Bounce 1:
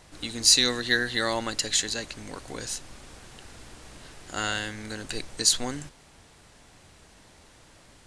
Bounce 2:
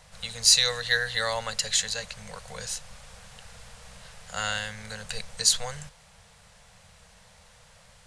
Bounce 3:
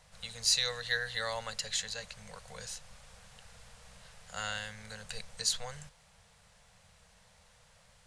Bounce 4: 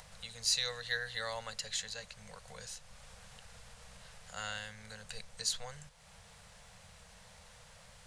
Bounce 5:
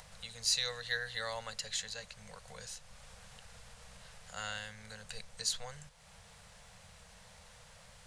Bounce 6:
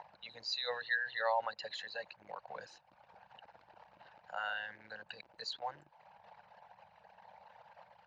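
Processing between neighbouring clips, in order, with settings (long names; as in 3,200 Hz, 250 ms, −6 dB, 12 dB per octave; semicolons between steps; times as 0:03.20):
elliptic band-stop filter 200–470 Hz, stop band 40 dB
dynamic equaliser 9,800 Hz, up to −4 dB, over −36 dBFS, Q 0.7; level −7.5 dB
upward compression, threshold −43 dBFS; level −3.5 dB
no processing that can be heard
spectral envelope exaggerated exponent 2; in parallel at −9.5 dB: bit reduction 8 bits; on the sum: loudspeaker in its box 330–3,500 Hz, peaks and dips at 330 Hz +6 dB, 580 Hz +5 dB, 890 Hz +6 dB, 1,400 Hz −3 dB, 2,100 Hz −5 dB, 3,400 Hz −9 dB; level +2 dB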